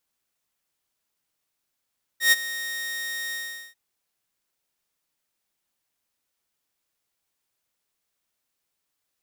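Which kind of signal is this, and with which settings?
note with an ADSR envelope saw 1,860 Hz, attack 120 ms, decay 28 ms, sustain −16 dB, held 1.13 s, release 413 ms −10.5 dBFS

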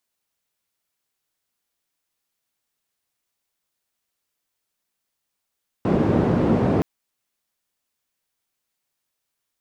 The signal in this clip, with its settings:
band-limited noise 100–330 Hz, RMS −19 dBFS 0.97 s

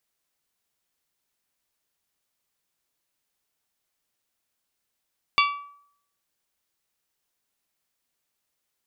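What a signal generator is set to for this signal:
struck glass bell, lowest mode 1,150 Hz, modes 5, decay 0.64 s, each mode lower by 2 dB, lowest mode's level −16.5 dB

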